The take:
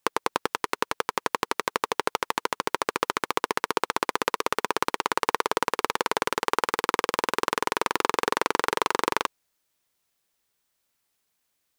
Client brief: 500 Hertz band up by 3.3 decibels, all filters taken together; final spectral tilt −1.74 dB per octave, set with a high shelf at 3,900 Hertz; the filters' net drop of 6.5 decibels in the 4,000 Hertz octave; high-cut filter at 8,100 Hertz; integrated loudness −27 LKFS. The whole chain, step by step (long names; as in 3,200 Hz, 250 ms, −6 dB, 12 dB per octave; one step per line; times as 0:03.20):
low-pass filter 8,100 Hz
parametric band 500 Hz +4 dB
high-shelf EQ 3,900 Hz −7.5 dB
parametric band 4,000 Hz −4 dB
level +0.5 dB